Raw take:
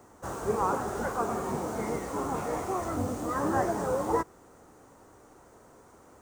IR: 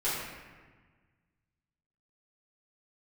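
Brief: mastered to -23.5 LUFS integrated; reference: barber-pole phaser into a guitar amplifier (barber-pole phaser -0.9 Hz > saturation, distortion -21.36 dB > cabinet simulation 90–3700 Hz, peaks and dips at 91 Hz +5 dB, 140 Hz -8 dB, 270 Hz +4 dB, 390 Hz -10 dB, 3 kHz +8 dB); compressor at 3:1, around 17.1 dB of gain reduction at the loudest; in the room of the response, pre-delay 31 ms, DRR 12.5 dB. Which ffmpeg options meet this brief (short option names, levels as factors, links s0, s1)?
-filter_complex "[0:a]acompressor=threshold=0.00447:ratio=3,asplit=2[s0][s1];[1:a]atrim=start_sample=2205,adelay=31[s2];[s1][s2]afir=irnorm=-1:irlink=0,volume=0.0841[s3];[s0][s3]amix=inputs=2:normalize=0,asplit=2[s4][s5];[s5]afreqshift=-0.9[s6];[s4][s6]amix=inputs=2:normalize=1,asoftclip=threshold=0.0119,highpass=90,equalizer=f=91:t=q:w=4:g=5,equalizer=f=140:t=q:w=4:g=-8,equalizer=f=270:t=q:w=4:g=4,equalizer=f=390:t=q:w=4:g=-10,equalizer=f=3000:t=q:w=4:g=8,lowpass=f=3700:w=0.5412,lowpass=f=3700:w=1.3066,volume=25.1"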